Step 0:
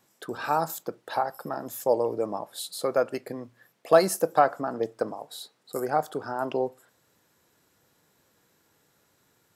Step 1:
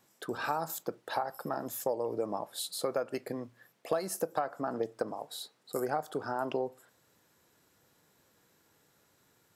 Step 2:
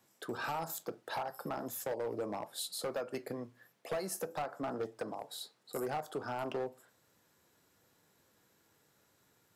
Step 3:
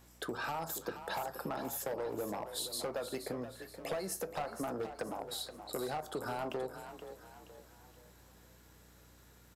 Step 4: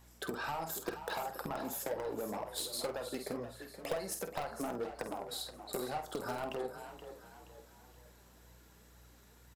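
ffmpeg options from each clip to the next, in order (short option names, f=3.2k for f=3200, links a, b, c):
-af "acompressor=threshold=-26dB:ratio=12,volume=-1.5dB"
-filter_complex "[0:a]flanger=delay=8.8:depth=2.4:regen=-76:speed=0.34:shape=triangular,acrossover=split=180|7700[a][b][c];[b]asoftclip=type=hard:threshold=-34dB[d];[a][d][c]amix=inputs=3:normalize=0,volume=2dB"
-filter_complex "[0:a]acompressor=threshold=-45dB:ratio=3,aeval=exprs='val(0)+0.000355*(sin(2*PI*60*n/s)+sin(2*PI*2*60*n/s)/2+sin(2*PI*3*60*n/s)/3+sin(2*PI*4*60*n/s)/4+sin(2*PI*5*60*n/s)/5)':c=same,asplit=5[a][b][c][d][e];[b]adelay=475,afreqshift=32,volume=-10.5dB[f];[c]adelay=950,afreqshift=64,volume=-18.5dB[g];[d]adelay=1425,afreqshift=96,volume=-26.4dB[h];[e]adelay=1900,afreqshift=128,volume=-34.4dB[i];[a][f][g][h][i]amix=inputs=5:normalize=0,volume=7dB"
-filter_complex "[0:a]asplit=2[a][b];[b]acrusher=bits=4:mix=0:aa=0.000001,volume=-7.5dB[c];[a][c]amix=inputs=2:normalize=0,flanger=delay=1:depth=4.2:regen=49:speed=2:shape=sinusoidal,asplit=2[d][e];[e]adelay=49,volume=-9dB[f];[d][f]amix=inputs=2:normalize=0,volume=3dB"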